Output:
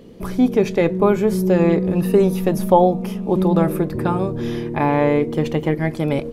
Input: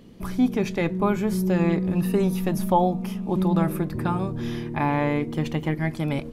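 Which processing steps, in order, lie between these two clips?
parametric band 470 Hz +9 dB 0.87 octaves
level +3 dB

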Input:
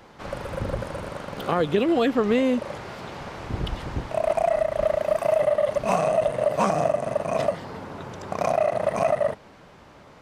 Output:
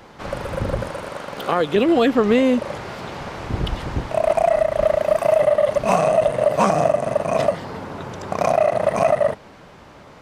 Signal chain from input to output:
0:00.90–0:01.76: low-shelf EQ 210 Hz −11 dB
level +5 dB

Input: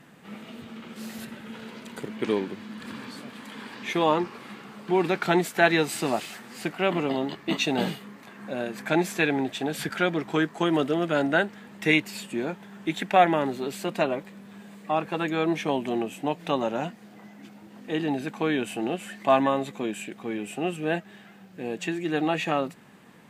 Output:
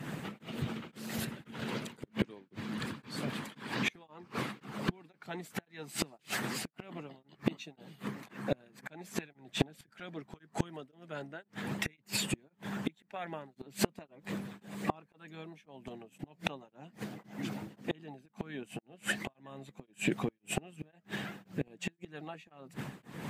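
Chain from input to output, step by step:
parametric band 140 Hz +14.5 dB 0.93 octaves
gate with flip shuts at −20 dBFS, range −29 dB
downward compressor 6 to 1, threshold −40 dBFS, peak gain reduction 13.5 dB
harmonic and percussive parts rebalanced harmonic −12 dB
shaped tremolo triangle 1.9 Hz, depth 100%
level +16 dB

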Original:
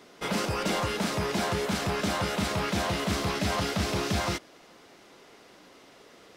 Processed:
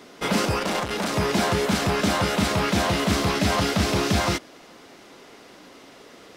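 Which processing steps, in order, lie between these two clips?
parametric band 260 Hz +3.5 dB 0.37 octaves
0:00.58–0:01.16: saturating transformer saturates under 1,300 Hz
level +6 dB

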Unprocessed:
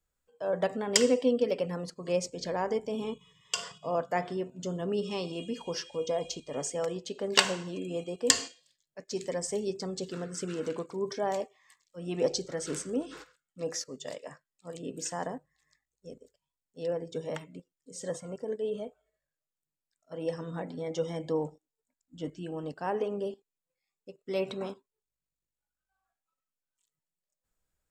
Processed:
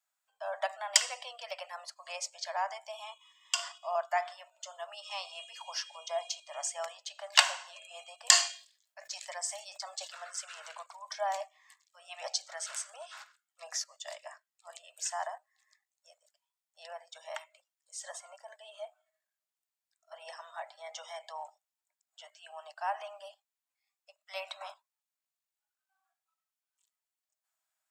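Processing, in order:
Butterworth high-pass 620 Hz 96 dB per octave
0:08.27–0:10.34: level that may fall only so fast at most 130 dB per second
level +1 dB

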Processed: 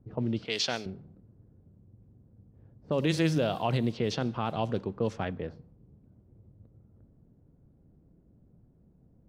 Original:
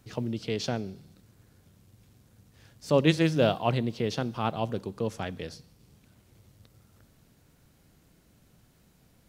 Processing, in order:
low-pass that shuts in the quiet parts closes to 410 Hz, open at −23 dBFS
0:00.45–0:00.86: spectral tilt +4.5 dB per octave
brickwall limiter −19 dBFS, peak gain reduction 10 dB
level +2 dB

